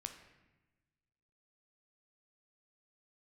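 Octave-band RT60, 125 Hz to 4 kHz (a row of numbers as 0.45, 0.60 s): 1.8, 1.5, 1.2, 1.0, 1.1, 0.80 s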